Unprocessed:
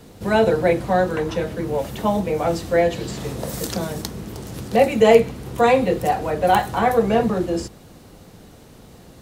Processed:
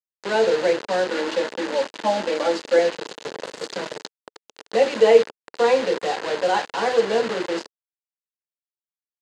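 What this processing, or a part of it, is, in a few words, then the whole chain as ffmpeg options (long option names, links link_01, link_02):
hand-held game console: -filter_complex "[0:a]asettb=1/sr,asplit=3[link_01][link_02][link_03];[link_01]atrim=end=1.114[link_04];[link_02]atrim=start=1.11:end=2.79,asetpts=PTS-STARTPTS,afade=type=in:duration=0.004:curve=qsin,afade=type=out:start_time=1.676:duration=0.004:curve=qsin,aecho=1:1:3.5:0.98,atrim=end_sample=74088[link_05];[link_03]atrim=start=2.786[link_06];[link_04][link_05]acrossfade=duration=0.004:curve1=hsin:curve2=qsin[link_07];[link_07][link_06]acrossfade=duration=0.004:curve1=qsin:curve2=hsin,acrusher=bits=3:mix=0:aa=0.000001,highpass=420,equalizer=frequency=450:width_type=q:width=4:gain=3,equalizer=frequency=720:width_type=q:width=4:gain=-7,equalizer=frequency=1200:width_type=q:width=4:gain=-6,equalizer=frequency=2300:width_type=q:width=4:gain=-6,equalizer=frequency=3400:width_type=q:width=4:gain=-4,equalizer=frequency=5600:width_type=q:width=4:gain=-8,lowpass=frequency=5800:width=0.5412,lowpass=frequency=5800:width=1.3066"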